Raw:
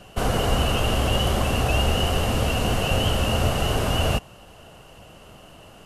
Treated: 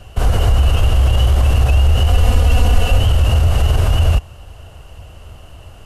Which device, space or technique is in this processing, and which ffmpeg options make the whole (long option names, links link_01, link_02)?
car stereo with a boomy subwoofer: -filter_complex "[0:a]lowshelf=frequency=120:width_type=q:width=1.5:gain=12.5,alimiter=limit=-8dB:level=0:latency=1:release=31,asettb=1/sr,asplit=3[link_01][link_02][link_03];[link_01]atrim=end=2.084[link_04];[link_02]atrim=start=2.08:end=2.99,asetpts=PTS-STARTPTS,afade=type=in:duration=0.004:curve=qsin,afade=type=out:start_time=0.906:duration=0.004:curve=qsin,aecho=1:1:4.1:0.65,atrim=end_sample=40131[link_05];[link_03]atrim=start=2.986[link_06];[link_04][link_05]acrossfade=duration=0.004:curve1=hsin:curve2=qsin[link_07];[link_07][link_06]acrossfade=duration=0.004:curve1=qsin:curve2=hsin,volume=2.5dB"